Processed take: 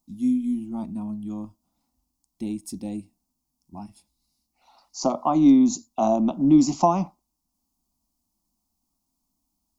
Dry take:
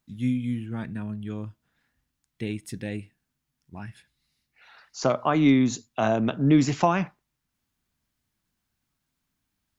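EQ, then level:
flat-topped bell 2,300 Hz −11 dB
phaser with its sweep stopped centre 450 Hz, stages 6
notch filter 610 Hz, Q 12
+4.5 dB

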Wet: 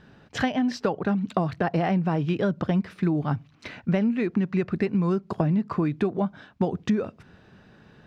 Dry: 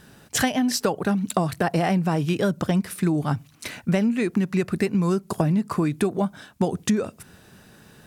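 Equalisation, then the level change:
high-frequency loss of the air 220 metres
−1.5 dB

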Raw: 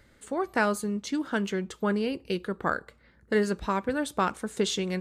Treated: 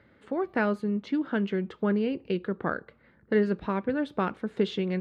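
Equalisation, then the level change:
dynamic equaliser 1,000 Hz, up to −6 dB, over −41 dBFS, Q 0.98
high-pass filter 110 Hz 12 dB per octave
high-frequency loss of the air 380 metres
+3.0 dB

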